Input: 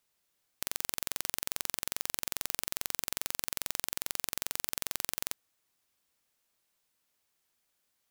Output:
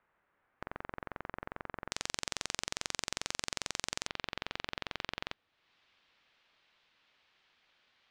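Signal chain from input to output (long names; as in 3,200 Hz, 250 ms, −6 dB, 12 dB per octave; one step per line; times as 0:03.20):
soft clipping −7 dBFS, distortion −44 dB
low-pass filter 1,700 Hz 24 dB per octave, from 0:01.92 7,200 Hz, from 0:04.07 3,700 Hz
one half of a high-frequency compander encoder only
level +6 dB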